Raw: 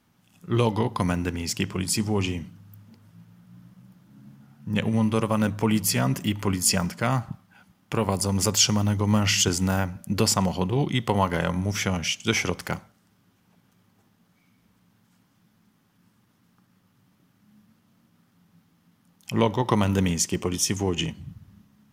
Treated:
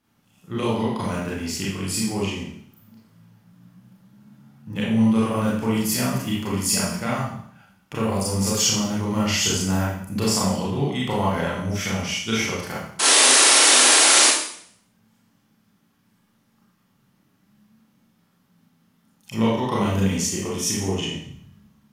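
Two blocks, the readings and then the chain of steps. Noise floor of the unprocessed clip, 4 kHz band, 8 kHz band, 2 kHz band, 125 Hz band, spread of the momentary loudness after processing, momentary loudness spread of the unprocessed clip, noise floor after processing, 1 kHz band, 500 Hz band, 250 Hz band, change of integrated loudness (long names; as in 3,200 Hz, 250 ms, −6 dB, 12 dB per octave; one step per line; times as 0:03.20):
−65 dBFS, +8.0 dB, +8.5 dB, +7.5 dB, −1.0 dB, 17 LU, 10 LU, −64 dBFS, +3.5 dB, +1.5 dB, +2.5 dB, +5.0 dB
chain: sound drawn into the spectrogram noise, 0:12.99–0:14.27, 250–11,000 Hz −15 dBFS
four-comb reverb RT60 0.63 s, combs from 28 ms, DRR −6.5 dB
level −6.5 dB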